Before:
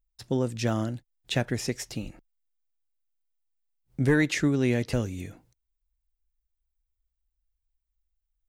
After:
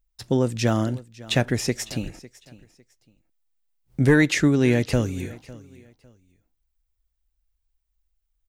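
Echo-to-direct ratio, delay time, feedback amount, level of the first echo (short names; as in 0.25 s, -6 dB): -19.5 dB, 0.553 s, 26%, -20.0 dB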